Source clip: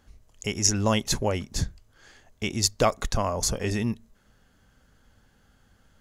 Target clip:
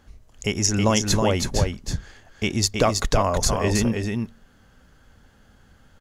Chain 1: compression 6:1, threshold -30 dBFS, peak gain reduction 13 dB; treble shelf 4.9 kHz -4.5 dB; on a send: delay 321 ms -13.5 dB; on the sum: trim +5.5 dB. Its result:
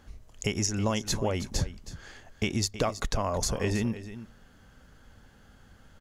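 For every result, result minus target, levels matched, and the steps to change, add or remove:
compression: peak gain reduction +8.5 dB; echo-to-direct -9 dB
change: compression 6:1, threshold -19.5 dBFS, peak gain reduction 4.5 dB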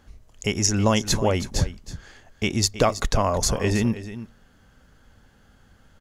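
echo-to-direct -9 dB
change: delay 321 ms -4.5 dB

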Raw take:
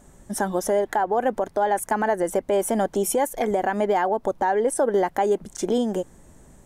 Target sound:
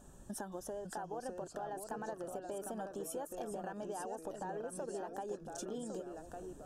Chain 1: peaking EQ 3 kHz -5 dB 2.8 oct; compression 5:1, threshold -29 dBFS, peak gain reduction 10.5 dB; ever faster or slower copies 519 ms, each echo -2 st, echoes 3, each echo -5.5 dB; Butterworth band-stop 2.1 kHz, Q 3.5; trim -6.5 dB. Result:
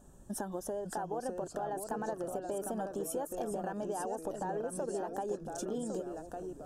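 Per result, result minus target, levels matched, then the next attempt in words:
compression: peak gain reduction -6 dB; 4 kHz band -3.5 dB
peaking EQ 3 kHz -5 dB 2.8 oct; compression 5:1, threshold -36 dBFS, peak gain reduction 16.5 dB; ever faster or slower copies 519 ms, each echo -2 st, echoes 3, each echo -5.5 dB; Butterworth band-stop 2.1 kHz, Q 3.5; trim -6.5 dB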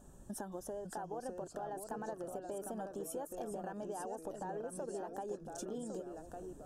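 4 kHz band -3.0 dB
compression 5:1, threshold -36 dBFS, peak gain reduction 16.5 dB; ever faster or slower copies 519 ms, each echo -2 st, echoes 3, each echo -5.5 dB; Butterworth band-stop 2.1 kHz, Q 3.5; trim -6.5 dB

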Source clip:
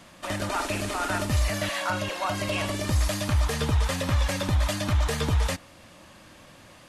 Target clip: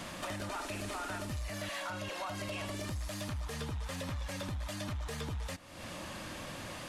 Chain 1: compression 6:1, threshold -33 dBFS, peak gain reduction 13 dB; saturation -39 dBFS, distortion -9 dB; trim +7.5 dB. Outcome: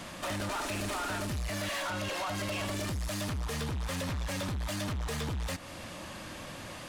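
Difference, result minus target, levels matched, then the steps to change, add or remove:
compression: peak gain reduction -9 dB
change: compression 6:1, threshold -44 dBFS, peak gain reduction 22.5 dB

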